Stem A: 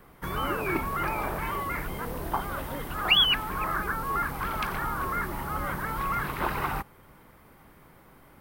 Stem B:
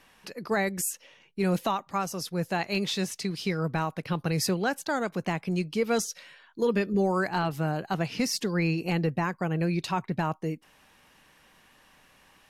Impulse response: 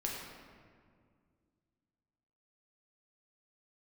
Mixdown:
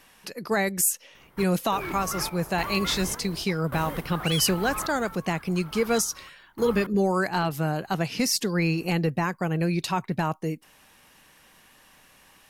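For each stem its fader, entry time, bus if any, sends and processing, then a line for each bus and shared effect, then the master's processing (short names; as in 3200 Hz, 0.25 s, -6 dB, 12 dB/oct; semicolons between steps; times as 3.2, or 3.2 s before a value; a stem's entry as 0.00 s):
+0.5 dB, 1.15 s, no send, soft clip -24 dBFS, distortion -11 dB; random-step tremolo, depth 100%
+2.0 dB, 0.00 s, no send, high shelf 7100 Hz +9 dB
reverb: off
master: dry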